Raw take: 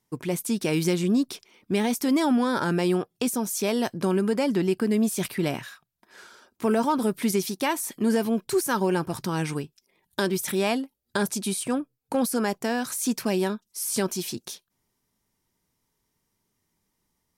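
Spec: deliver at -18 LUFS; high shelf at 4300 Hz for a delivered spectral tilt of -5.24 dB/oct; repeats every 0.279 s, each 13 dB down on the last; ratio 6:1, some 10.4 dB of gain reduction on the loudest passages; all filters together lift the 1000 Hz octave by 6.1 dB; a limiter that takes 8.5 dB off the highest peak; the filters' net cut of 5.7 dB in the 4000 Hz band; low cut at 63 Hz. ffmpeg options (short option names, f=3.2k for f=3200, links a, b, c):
-af "highpass=63,equalizer=f=1k:t=o:g=8,equalizer=f=4k:t=o:g=-3.5,highshelf=f=4.3k:g=-8,acompressor=threshold=-26dB:ratio=6,alimiter=limit=-22.5dB:level=0:latency=1,aecho=1:1:279|558|837:0.224|0.0493|0.0108,volume=14.5dB"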